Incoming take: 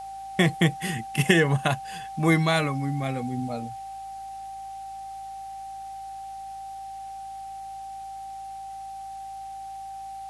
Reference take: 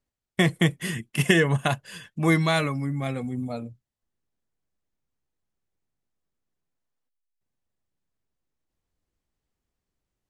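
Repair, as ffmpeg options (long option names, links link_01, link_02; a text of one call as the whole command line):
ffmpeg -i in.wav -af "bandreject=frequency=54.5:width_type=h:width=4,bandreject=frequency=109:width_type=h:width=4,bandreject=frequency=163.5:width_type=h:width=4,bandreject=frequency=218:width_type=h:width=4,bandreject=frequency=780:width=30,agate=range=-21dB:threshold=-30dB" out.wav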